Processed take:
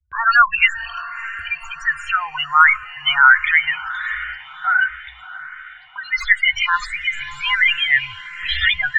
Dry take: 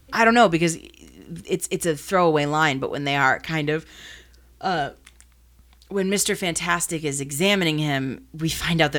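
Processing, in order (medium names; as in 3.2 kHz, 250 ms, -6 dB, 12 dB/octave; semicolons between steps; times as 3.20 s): tracing distortion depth 0.26 ms; loudest bins only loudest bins 16; inverse Chebyshev band-stop 180–600 Hz, stop band 50 dB; gate with hold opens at -43 dBFS; low-pass 2.6 kHz 12 dB/octave; tilt shelf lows -10 dB, about 1.1 kHz; de-esser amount 75%; peaking EQ 290 Hz +2.5 dB; on a send: echo that smears into a reverb 589 ms, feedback 58%, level -15.5 dB; on the sum: loudness maximiser +16.5 dB; barber-pole phaser +1.4 Hz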